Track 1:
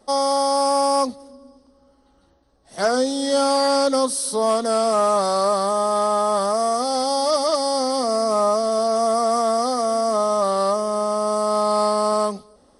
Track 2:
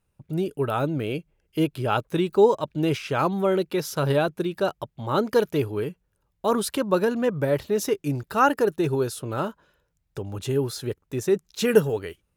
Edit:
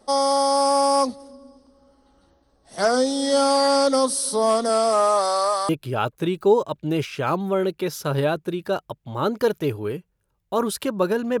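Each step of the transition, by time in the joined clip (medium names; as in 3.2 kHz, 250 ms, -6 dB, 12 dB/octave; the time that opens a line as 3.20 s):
track 1
4.68–5.69 s: high-pass 190 Hz -> 860 Hz
5.69 s: go over to track 2 from 1.61 s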